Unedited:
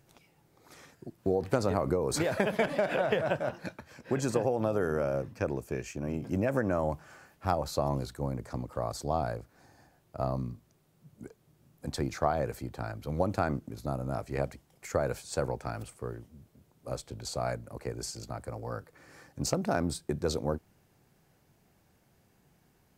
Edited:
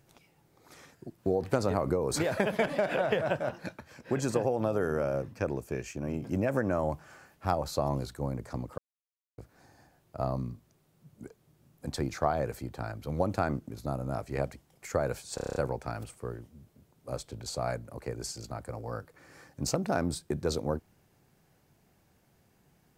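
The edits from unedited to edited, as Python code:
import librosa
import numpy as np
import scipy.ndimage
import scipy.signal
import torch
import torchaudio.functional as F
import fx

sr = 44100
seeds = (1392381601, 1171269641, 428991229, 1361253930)

y = fx.edit(x, sr, fx.silence(start_s=8.78, length_s=0.6),
    fx.stutter(start_s=15.35, slice_s=0.03, count=8), tone=tone)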